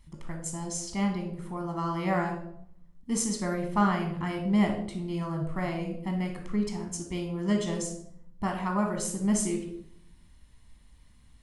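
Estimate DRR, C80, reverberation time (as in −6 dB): 2.0 dB, 10.5 dB, 0.70 s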